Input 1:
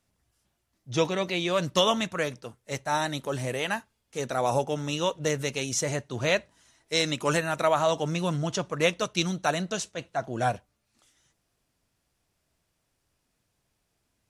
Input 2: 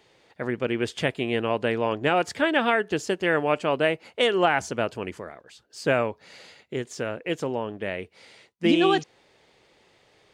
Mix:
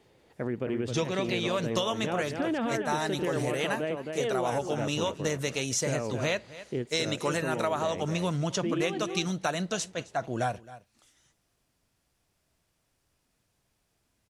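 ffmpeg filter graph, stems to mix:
-filter_complex "[0:a]volume=1.12,asplit=2[s0][s1];[s1]volume=0.0794[s2];[1:a]tiltshelf=f=710:g=5.5,alimiter=limit=0.126:level=0:latency=1,volume=0.708,asplit=2[s3][s4];[s4]volume=0.473[s5];[s2][s5]amix=inputs=2:normalize=0,aecho=0:1:265:1[s6];[s0][s3][s6]amix=inputs=3:normalize=0,acompressor=threshold=0.0562:ratio=6"

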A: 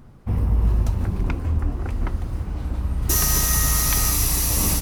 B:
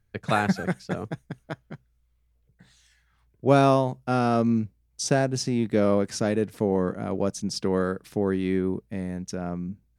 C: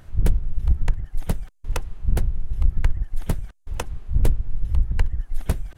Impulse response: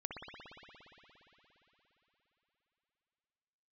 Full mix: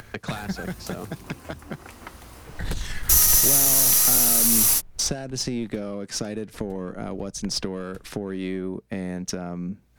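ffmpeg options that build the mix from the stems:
-filter_complex "[0:a]highpass=f=1000:p=1,volume=0.841[s0];[1:a]acompressor=mode=upward:threshold=0.0447:ratio=2.5,volume=1.06,asplit=2[s1][s2];[2:a]adelay=2450,volume=0.944[s3];[s2]apad=whole_len=362628[s4];[s3][s4]sidechaincompress=threshold=0.0158:ratio=8:attack=16:release=1480[s5];[s1][s5]amix=inputs=2:normalize=0,asplit=2[s6][s7];[s7]highpass=f=720:p=1,volume=7.94,asoftclip=type=tanh:threshold=0.668[s8];[s6][s8]amix=inputs=2:normalize=0,lowpass=f=1500:p=1,volume=0.501,acompressor=threshold=0.0794:ratio=4,volume=1[s9];[s0][s9]amix=inputs=2:normalize=0,highshelf=f=5100:g=8,acrossover=split=270|3000[s10][s11][s12];[s11]acompressor=threshold=0.02:ratio=6[s13];[s10][s13][s12]amix=inputs=3:normalize=0,aeval=exprs='0.668*(cos(1*acos(clip(val(0)/0.668,-1,1)))-cos(1*PI/2))+0.0473*(cos(6*acos(clip(val(0)/0.668,-1,1)))-cos(6*PI/2))':c=same"

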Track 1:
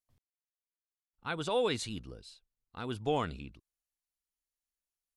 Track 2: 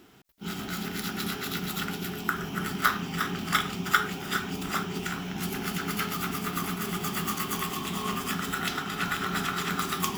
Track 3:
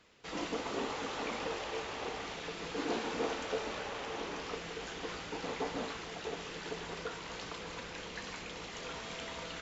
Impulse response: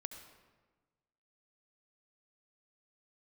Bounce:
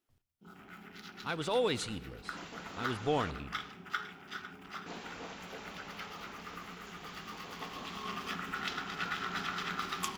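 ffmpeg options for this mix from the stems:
-filter_complex "[0:a]volume=0.75,asplit=2[s0][s1];[s1]volume=0.447[s2];[1:a]afwtdn=0.01,lowshelf=f=470:g=-8.5,volume=0.376,afade=t=in:st=7.52:d=0.68:silence=0.446684,asplit=3[s3][s4][s5];[s4]volume=0.668[s6];[s5]volume=0.299[s7];[2:a]equalizer=f=400:w=1.5:g=-9,adelay=2000,volume=0.422,asplit=3[s8][s9][s10];[s8]atrim=end=3.31,asetpts=PTS-STARTPTS,afade=t=out:st=3.306:d=0.004:c=hsin[s11];[s9]atrim=start=3.31:end=4.86,asetpts=PTS-STARTPTS,volume=0[s12];[s10]atrim=start=4.86,asetpts=PTS-STARTPTS,afade=t=in:d=0.004:c=hsin[s13];[s11][s12][s13]concat=n=3:v=0:a=1[s14];[3:a]atrim=start_sample=2205[s15];[s2][s6]amix=inputs=2:normalize=0[s16];[s16][s15]afir=irnorm=-1:irlink=0[s17];[s7]aecho=0:1:502:1[s18];[s0][s3][s14][s17][s18]amix=inputs=5:normalize=0"

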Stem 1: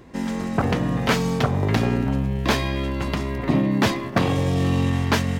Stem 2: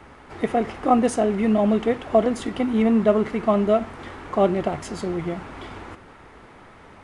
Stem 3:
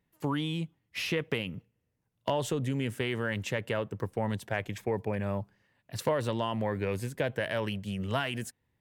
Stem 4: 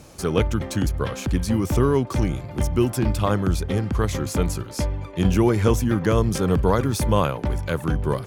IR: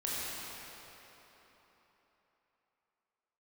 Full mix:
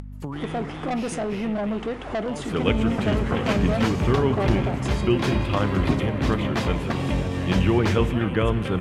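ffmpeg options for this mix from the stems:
-filter_complex "[0:a]acrusher=bits=9:mix=0:aa=0.000001,adelay=2400,volume=1.33,asplit=2[s0][s1];[s1]volume=0.316[s2];[1:a]asoftclip=type=tanh:threshold=0.1,agate=range=0.0224:threshold=0.0126:ratio=16:detection=peak,volume=0.708[s3];[2:a]equalizer=f=180:w=0.93:g=7,aeval=exprs='val(0)+0.0112*(sin(2*PI*50*n/s)+sin(2*PI*2*50*n/s)/2+sin(2*PI*3*50*n/s)/3+sin(2*PI*4*50*n/s)/4+sin(2*PI*5*50*n/s)/5)':c=same,volume=0.299,asplit=4[s4][s5][s6][s7];[s5]volume=0.168[s8];[s6]volume=0.708[s9];[3:a]highshelf=f=4100:t=q:w=3:g=-12.5,adelay=2300,volume=0.631,asplit=2[s10][s11];[s11]volume=0.211[s12];[s7]apad=whole_len=343843[s13];[s0][s13]sidechaincompress=threshold=0.00251:ratio=4:attack=16:release=308[s14];[4:a]atrim=start_sample=2205[s15];[s8][s12]amix=inputs=2:normalize=0[s16];[s16][s15]afir=irnorm=-1:irlink=0[s17];[s2][s9]amix=inputs=2:normalize=0,aecho=0:1:337:1[s18];[s14][s3][s4][s10][s17][s18]amix=inputs=6:normalize=0,acompressor=mode=upward:threshold=0.0562:ratio=2.5,lowpass=11000"

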